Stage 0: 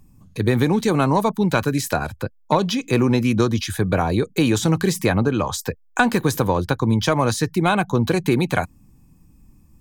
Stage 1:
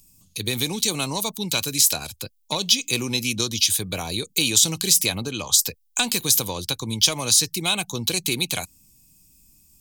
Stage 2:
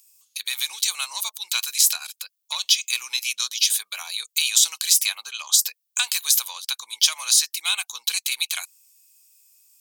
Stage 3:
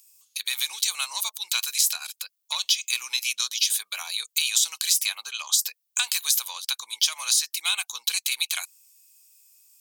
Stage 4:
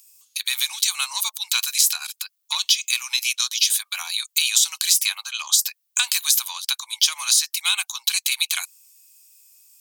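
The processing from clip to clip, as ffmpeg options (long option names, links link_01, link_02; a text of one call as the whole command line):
ffmpeg -i in.wav -af "aexciter=amount=13:drive=2.7:freq=2500,volume=-11dB" out.wav
ffmpeg -i in.wav -af "highpass=frequency=1100:width=0.5412,highpass=frequency=1100:width=1.3066" out.wav
ffmpeg -i in.wav -af "acompressor=threshold=-21dB:ratio=2" out.wav
ffmpeg -i in.wav -af "highpass=frequency=780:width=0.5412,highpass=frequency=780:width=1.3066,volume=4dB" out.wav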